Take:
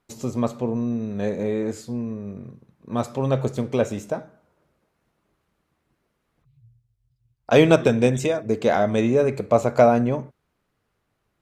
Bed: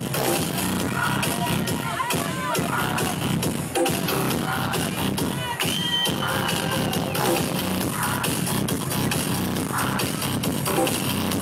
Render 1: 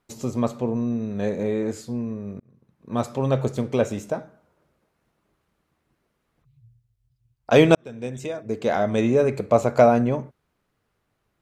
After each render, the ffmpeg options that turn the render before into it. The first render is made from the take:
-filter_complex "[0:a]asplit=3[s0][s1][s2];[s0]atrim=end=2.4,asetpts=PTS-STARTPTS,afade=t=out:st=2.396:d=0.004:c=hsin[s3];[s1]atrim=start=2.4:end=7.75,asetpts=PTS-STARTPTS,afade=t=in:d=0.57,afade=t=out:st=5.346:d=0.004:c=hsin[s4];[s2]atrim=start=7.75,asetpts=PTS-STARTPTS,afade=t=in:d=1.35[s5];[s3][s4][s5]concat=n=3:v=0:a=1"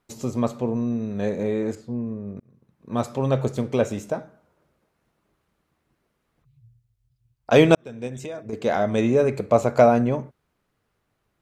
-filter_complex "[0:a]asettb=1/sr,asplit=3[s0][s1][s2];[s0]atrim=end=1.754[s3];[s1]atrim=start=1.75:end=2.37,asetpts=PTS-STARTPTS,afade=t=in:d=0.004:c=qsin,afade=t=out:st=0.616:d=0.004:c=qsin,lowpass=f=1000:p=1[s4];[s2]atrim=start=2.366[s5];[s3][s4]acrossfade=d=0.004:c1=hsin:c2=qsin[s6];[s6][s5]acrossfade=d=0.004:c1=qsin:c2=hsin,asettb=1/sr,asplit=3[s7][s8][s9];[s7]atrim=end=8.074[s10];[s8]atrim=start=8.07:end=8.53,asetpts=PTS-STARTPTS,afade=t=in:d=0.004:c=qsin,afade=t=out:st=0.456:d=0.004:c=qsin,acompressor=threshold=0.0355:ratio=4:attack=3.2:release=140:knee=1:detection=peak[s11];[s9]atrim=start=8.526[s12];[s10][s11]acrossfade=d=0.004:c1=hsin:c2=qsin[s13];[s13][s12]acrossfade=d=0.004:c1=qsin:c2=hsin"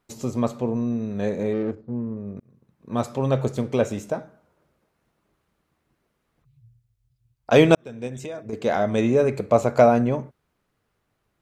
-filter_complex "[0:a]asettb=1/sr,asplit=3[s0][s1][s2];[s0]atrim=end=1.534[s3];[s1]atrim=start=1.53:end=2.17,asetpts=PTS-STARTPTS,afade=t=in:d=0.004:c=qsin,afade=t=out:st=0.636:d=0.004:c=qsin,adynamicsmooth=sensitivity=2.5:basefreq=760[s4];[s2]atrim=start=2.166[s5];[s3][s4]acrossfade=d=0.004:c1=hsin:c2=qsin[s6];[s6][s5]acrossfade=d=0.004:c1=qsin:c2=hsin"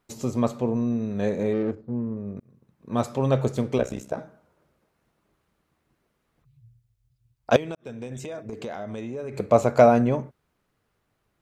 -filter_complex "[0:a]asettb=1/sr,asplit=3[s0][s1][s2];[s0]atrim=end=3.784[s3];[s1]atrim=start=3.78:end=4.18,asetpts=PTS-STARTPTS,afade=t=in:d=0.004:c=qsin,afade=t=out:st=0.396:d=0.004:c=qsin,tremolo=f=64:d=0.919[s4];[s2]atrim=start=4.176[s5];[s3][s4]acrossfade=d=0.004:c1=hsin:c2=qsin[s6];[s6][s5]acrossfade=d=0.004:c1=qsin:c2=hsin,asettb=1/sr,asplit=3[s7][s8][s9];[s7]atrim=end=7.564[s10];[s8]atrim=start=7.56:end=9.4,asetpts=PTS-STARTPTS,afade=t=in:d=0.004:c=qsin,afade=t=out:st=1.836:d=0.004:c=qsin,acompressor=threshold=0.0316:ratio=8:attack=3.2:release=140:knee=1:detection=peak[s11];[s9]atrim=start=9.396[s12];[s10][s11]acrossfade=d=0.004:c1=hsin:c2=qsin[s13];[s13][s12]acrossfade=d=0.004:c1=qsin:c2=hsin"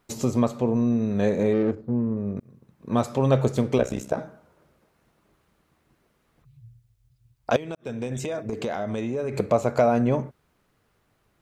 -filter_complex "[0:a]asplit=2[s0][s1];[s1]acompressor=threshold=0.0398:ratio=6,volume=0.891[s2];[s0][s2]amix=inputs=2:normalize=0,alimiter=limit=0.376:level=0:latency=1:release=388"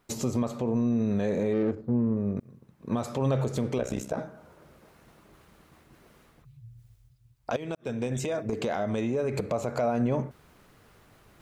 -af "alimiter=limit=0.126:level=0:latency=1:release=72,areverse,acompressor=mode=upward:threshold=0.00501:ratio=2.5,areverse"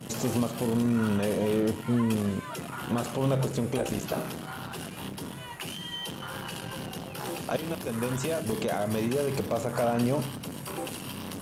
-filter_complex "[1:a]volume=0.211[s0];[0:a][s0]amix=inputs=2:normalize=0"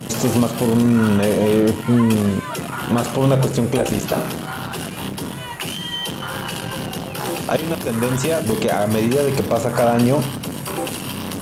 -af "volume=3.35"

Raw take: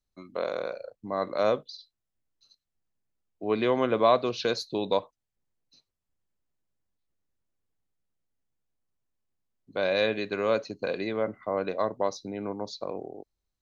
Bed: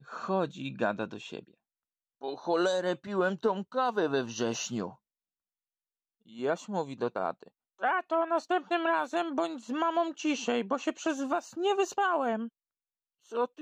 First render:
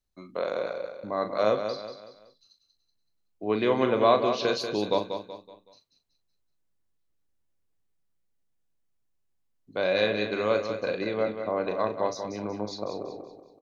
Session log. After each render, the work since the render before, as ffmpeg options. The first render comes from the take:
-filter_complex "[0:a]asplit=2[s0][s1];[s1]adelay=38,volume=0.355[s2];[s0][s2]amix=inputs=2:normalize=0,aecho=1:1:188|376|564|752:0.398|0.155|0.0606|0.0236"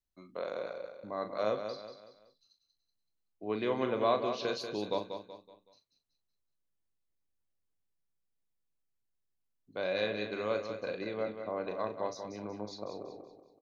-af "volume=0.398"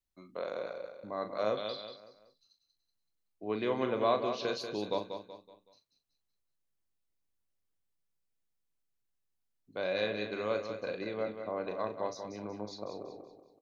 -filter_complex "[0:a]asettb=1/sr,asplit=3[s0][s1][s2];[s0]atrim=end=1.574[s3];[s1]atrim=start=1.57:end=1.97,asetpts=PTS-STARTPTS,afade=t=in:d=0.004:c=qsin,afade=t=out:st=0.396:d=0.004:c=qsin,lowpass=f=3400:t=q:w=7.9[s4];[s2]atrim=start=1.966[s5];[s3][s4]acrossfade=d=0.004:c1=hsin:c2=qsin[s6];[s6][s5]acrossfade=d=0.004:c1=qsin:c2=hsin"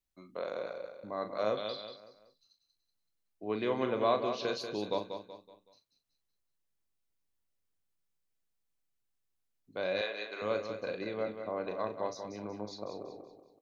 -filter_complex "[0:a]asettb=1/sr,asplit=3[s0][s1][s2];[s0]atrim=end=10.014[s3];[s1]atrim=start=10.01:end=10.42,asetpts=PTS-STARTPTS,afade=t=in:d=0.004:c=qsin,afade=t=out:st=0.406:d=0.004:c=qsin,highpass=600[s4];[s2]atrim=start=10.416[s5];[s3][s4]acrossfade=d=0.004:c1=hsin:c2=qsin[s6];[s6][s5]acrossfade=d=0.004:c1=qsin:c2=hsin"

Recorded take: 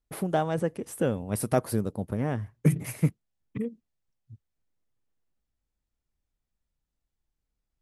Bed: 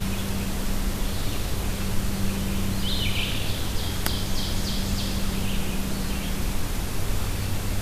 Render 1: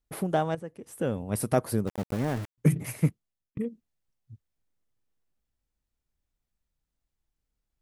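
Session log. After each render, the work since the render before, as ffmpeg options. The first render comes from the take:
-filter_complex "[0:a]asettb=1/sr,asplit=3[s0][s1][s2];[s0]atrim=end=1.874[s3];[s1]atrim=start=1.87:end=2.58,asetpts=PTS-STARTPTS,afade=t=in:d=0.004:c=qsin,afade=t=out:st=0.706:d=0.004:c=qsin,aeval=exprs='val(0)*gte(abs(val(0)),0.02)':c=same[s4];[s2]atrim=start=2.576[s5];[s3][s4]acrossfade=d=0.004:c1=hsin:c2=qsin[s6];[s6][s5]acrossfade=d=0.004:c1=qsin:c2=hsin,asplit=3[s7][s8][s9];[s7]atrim=end=0.55,asetpts=PTS-STARTPTS,afade=t=out:st=0.546:d=0.004:c=hsin:silence=0.237137[s10];[s8]atrim=start=0.55:end=3.57,asetpts=PTS-STARTPTS,afade=t=in:d=0.63:c=qua:silence=0.237137,afade=t=out:st=2.53:d=0.49[s11];[s9]atrim=start=3.57,asetpts=PTS-STARTPTS,afade=t=in:d=0.004:c=hsin[s12];[s10][s11][s12]concat=n=3:v=0:a=1"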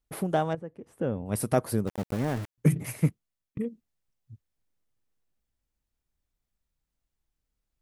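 -filter_complex "[0:a]asettb=1/sr,asplit=3[s0][s1][s2];[s0]atrim=end=0.534[s3];[s1]atrim=start=0.53:end=1.26,asetpts=PTS-STARTPTS,afade=t=in:d=0.004:c=qsin,afade=t=out:st=0.726:d=0.004:c=qsin,lowpass=f=1300:p=1[s4];[s2]atrim=start=1.256[s5];[s3][s4]acrossfade=d=0.004:c1=hsin:c2=qsin[s6];[s6][s5]acrossfade=d=0.004:c1=qsin:c2=hsin"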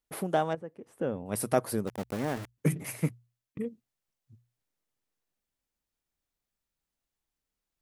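-af "lowshelf=f=150:g=-11.5,bandreject=f=60:t=h:w=6,bandreject=f=120:t=h:w=6"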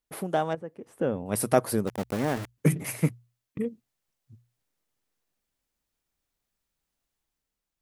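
-af "dynaudnorm=f=110:g=11:m=1.68"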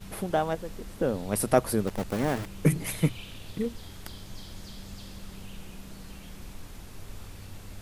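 -filter_complex "[1:a]volume=0.15[s0];[0:a][s0]amix=inputs=2:normalize=0"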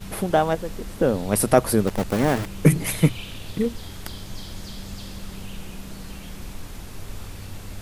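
-af "volume=2.24,alimiter=limit=0.891:level=0:latency=1"

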